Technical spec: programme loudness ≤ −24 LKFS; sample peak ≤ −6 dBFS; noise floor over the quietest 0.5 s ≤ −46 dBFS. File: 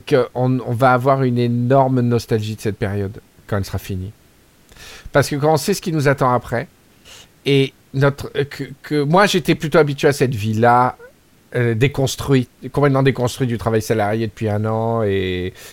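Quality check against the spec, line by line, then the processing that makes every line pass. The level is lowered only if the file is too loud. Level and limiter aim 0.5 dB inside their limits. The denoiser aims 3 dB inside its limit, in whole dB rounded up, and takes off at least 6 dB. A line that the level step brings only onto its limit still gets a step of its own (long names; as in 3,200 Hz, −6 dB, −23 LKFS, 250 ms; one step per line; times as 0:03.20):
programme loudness −18.0 LKFS: out of spec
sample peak −2.5 dBFS: out of spec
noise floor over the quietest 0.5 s −51 dBFS: in spec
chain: level −6.5 dB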